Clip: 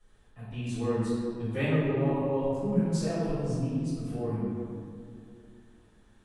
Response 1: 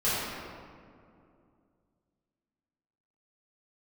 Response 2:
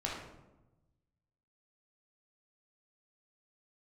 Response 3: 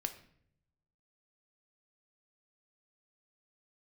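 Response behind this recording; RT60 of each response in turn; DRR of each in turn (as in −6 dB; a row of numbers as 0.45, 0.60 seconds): 1; 2.4, 1.0, 0.65 seconds; −12.5, −4.5, 7.0 decibels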